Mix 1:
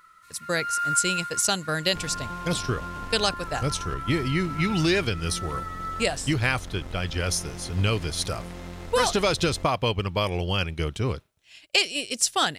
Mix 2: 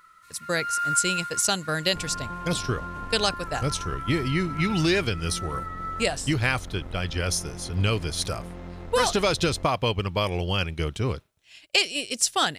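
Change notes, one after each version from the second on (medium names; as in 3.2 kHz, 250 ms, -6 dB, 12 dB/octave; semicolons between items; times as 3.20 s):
second sound: add low-pass 1.4 kHz 6 dB/octave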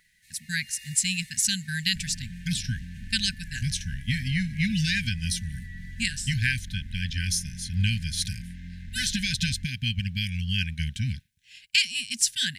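master: add brick-wall FIR band-stop 250–1500 Hz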